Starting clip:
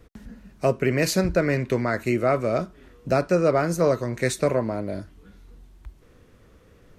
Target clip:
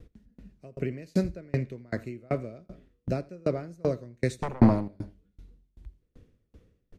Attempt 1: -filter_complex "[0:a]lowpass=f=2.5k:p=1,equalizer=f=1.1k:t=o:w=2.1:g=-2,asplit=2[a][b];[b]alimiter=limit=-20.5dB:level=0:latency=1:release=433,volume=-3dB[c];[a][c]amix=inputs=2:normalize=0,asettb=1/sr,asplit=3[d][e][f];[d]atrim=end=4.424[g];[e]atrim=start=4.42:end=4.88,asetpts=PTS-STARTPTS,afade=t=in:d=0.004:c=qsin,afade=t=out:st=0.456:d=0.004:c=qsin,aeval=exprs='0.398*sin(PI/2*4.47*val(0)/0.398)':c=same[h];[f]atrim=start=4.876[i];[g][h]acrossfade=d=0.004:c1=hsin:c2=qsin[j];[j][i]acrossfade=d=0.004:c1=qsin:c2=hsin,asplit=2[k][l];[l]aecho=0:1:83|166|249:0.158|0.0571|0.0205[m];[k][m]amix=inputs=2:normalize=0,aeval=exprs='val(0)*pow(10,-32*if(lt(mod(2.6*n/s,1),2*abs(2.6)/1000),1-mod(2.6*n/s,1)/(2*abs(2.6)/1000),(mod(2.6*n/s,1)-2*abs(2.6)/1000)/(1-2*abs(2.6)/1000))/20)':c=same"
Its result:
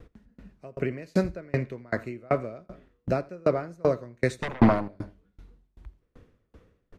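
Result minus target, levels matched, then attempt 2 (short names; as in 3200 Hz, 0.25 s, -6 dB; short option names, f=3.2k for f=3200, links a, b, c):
1000 Hz band +3.5 dB
-filter_complex "[0:a]lowpass=f=2.5k:p=1,equalizer=f=1.1k:t=o:w=2.1:g=-13.5,asplit=2[a][b];[b]alimiter=limit=-20.5dB:level=0:latency=1:release=433,volume=-3dB[c];[a][c]amix=inputs=2:normalize=0,asettb=1/sr,asplit=3[d][e][f];[d]atrim=end=4.424[g];[e]atrim=start=4.42:end=4.88,asetpts=PTS-STARTPTS,afade=t=in:d=0.004:c=qsin,afade=t=out:st=0.456:d=0.004:c=qsin,aeval=exprs='0.398*sin(PI/2*4.47*val(0)/0.398)':c=same[h];[f]atrim=start=4.876[i];[g][h]acrossfade=d=0.004:c1=hsin:c2=qsin[j];[j][i]acrossfade=d=0.004:c1=qsin:c2=hsin,asplit=2[k][l];[l]aecho=0:1:83|166|249:0.158|0.0571|0.0205[m];[k][m]amix=inputs=2:normalize=0,aeval=exprs='val(0)*pow(10,-32*if(lt(mod(2.6*n/s,1),2*abs(2.6)/1000),1-mod(2.6*n/s,1)/(2*abs(2.6)/1000),(mod(2.6*n/s,1)-2*abs(2.6)/1000)/(1-2*abs(2.6)/1000))/20)':c=same"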